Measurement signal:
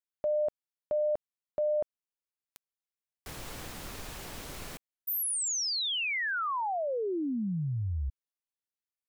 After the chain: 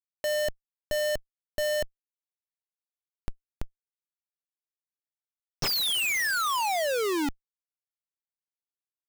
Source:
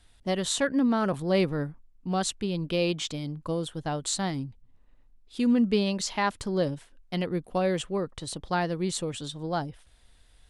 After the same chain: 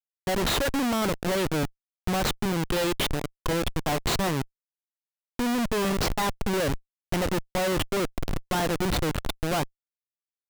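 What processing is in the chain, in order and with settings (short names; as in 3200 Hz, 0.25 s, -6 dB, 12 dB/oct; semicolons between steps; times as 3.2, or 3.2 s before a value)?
overdrive pedal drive 20 dB, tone 2900 Hz, clips at -12 dBFS; Schmitt trigger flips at -23 dBFS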